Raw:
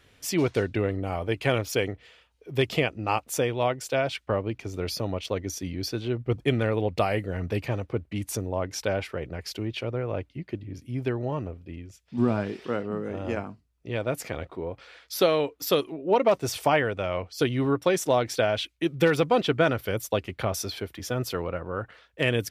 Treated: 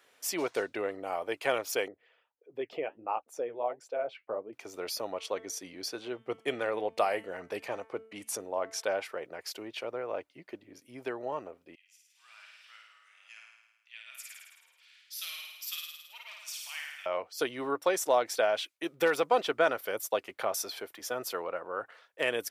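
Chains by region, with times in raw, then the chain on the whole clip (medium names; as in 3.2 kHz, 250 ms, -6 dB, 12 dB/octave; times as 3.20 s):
1.88–4.53 s: resonances exaggerated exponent 1.5 + low-pass 1.5 kHz 6 dB/octave + flange 1.5 Hz, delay 2.9 ms, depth 7.9 ms, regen -60%
5.10–8.83 s: low-pass 12 kHz 24 dB/octave + de-hum 222.4 Hz, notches 16
11.75–17.06 s: ladder high-pass 2.1 kHz, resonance 35% + flutter echo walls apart 9.2 m, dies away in 1.1 s
whole clip: high-pass 620 Hz 12 dB/octave; peaking EQ 3.1 kHz -7 dB 2.1 oct; trim +1.5 dB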